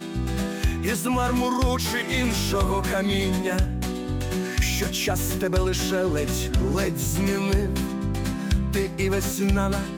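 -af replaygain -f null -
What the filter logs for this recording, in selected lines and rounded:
track_gain = +7.8 dB
track_peak = 0.175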